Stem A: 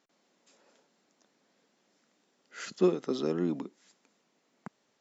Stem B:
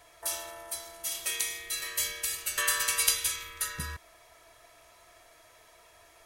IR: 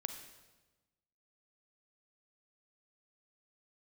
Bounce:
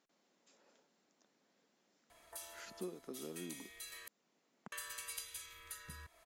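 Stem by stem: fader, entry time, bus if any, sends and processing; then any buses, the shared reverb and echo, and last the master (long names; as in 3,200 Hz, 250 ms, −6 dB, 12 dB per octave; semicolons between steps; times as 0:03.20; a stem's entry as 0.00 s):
−5.5 dB, 0.00 s, no send, no processing
−7.5 dB, 2.10 s, muted 0:04.08–0:04.72, no send, notch filter 5,600 Hz, Q 14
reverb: not used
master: downward compressor 2 to 1, threshold −53 dBFS, peak gain reduction 15.5 dB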